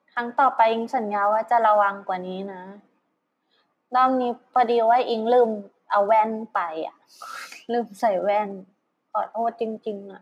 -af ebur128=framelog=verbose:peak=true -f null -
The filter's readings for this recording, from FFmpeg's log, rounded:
Integrated loudness:
  I:         -22.5 LUFS
  Threshold: -33.5 LUFS
Loudness range:
  LRA:         5.9 LU
  Threshold: -43.7 LUFS
  LRA low:   -27.6 LUFS
  LRA high:  -21.7 LUFS
True peak:
  Peak:       -7.5 dBFS